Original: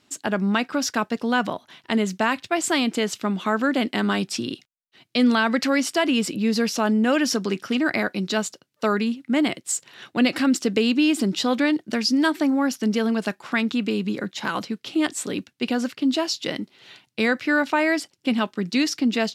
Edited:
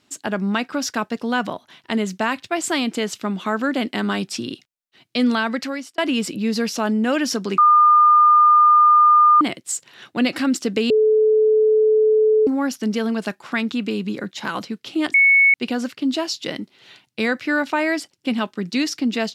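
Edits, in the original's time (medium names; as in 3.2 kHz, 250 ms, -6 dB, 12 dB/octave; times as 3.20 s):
5.17–5.98 s: fade out equal-power
7.58–9.41 s: bleep 1.21 kHz -9 dBFS
10.90–12.47 s: bleep 433 Hz -12 dBFS
15.14–15.54 s: bleep 2.21 kHz -10 dBFS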